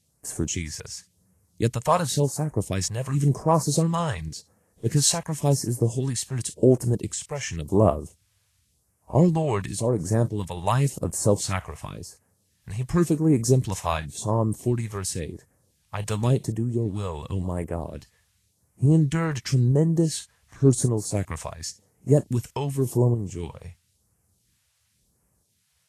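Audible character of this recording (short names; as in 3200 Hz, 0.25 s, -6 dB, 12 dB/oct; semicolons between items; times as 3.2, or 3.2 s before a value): random-step tremolo; a quantiser's noise floor 12-bit, dither triangular; phasing stages 2, 0.92 Hz, lowest notch 270–3600 Hz; Vorbis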